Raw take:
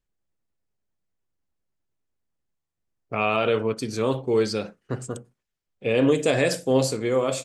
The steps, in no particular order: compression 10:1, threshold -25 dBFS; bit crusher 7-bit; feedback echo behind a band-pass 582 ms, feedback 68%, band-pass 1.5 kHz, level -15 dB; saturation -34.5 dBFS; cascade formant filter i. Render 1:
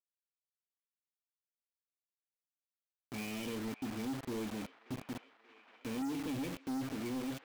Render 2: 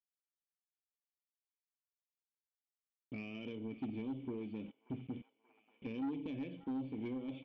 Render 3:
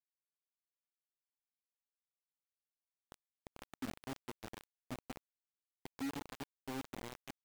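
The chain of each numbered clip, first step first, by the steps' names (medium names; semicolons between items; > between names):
cascade formant filter > compression > bit crusher > feedback echo behind a band-pass > saturation; bit crusher > compression > cascade formant filter > saturation > feedback echo behind a band-pass; feedback echo behind a band-pass > compression > saturation > cascade formant filter > bit crusher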